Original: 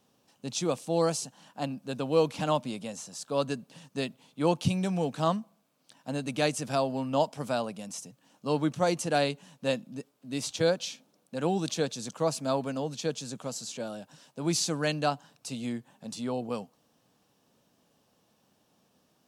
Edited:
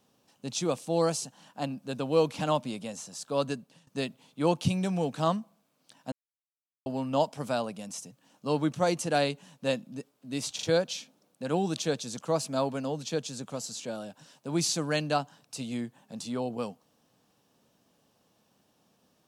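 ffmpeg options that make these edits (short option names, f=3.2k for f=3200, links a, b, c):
-filter_complex "[0:a]asplit=6[a][b][c][d][e][f];[a]atrim=end=3.87,asetpts=PTS-STARTPTS,afade=t=out:st=3.5:d=0.37:silence=0.133352[g];[b]atrim=start=3.87:end=6.12,asetpts=PTS-STARTPTS,afade=t=in:d=0.004:c=hsin:silence=0.133352,afade=t=out:st=2.246:d=0.004:c=hsin[h];[c]atrim=start=6.12:end=6.86,asetpts=PTS-STARTPTS,volume=0[i];[d]atrim=start=6.86:end=10.592,asetpts=PTS-STARTPTS,afade=t=in:d=0.004:c=hsin[j];[e]atrim=start=10.548:end=10.592[k];[f]atrim=start=10.548[l];[g][h][i][j]concat=n=4:v=0:a=1[m];[m][k]acrossfade=d=0.004:c1=hsin:c2=hsin[n];[n][l]acrossfade=d=0.004:c1=hsin:c2=hsin"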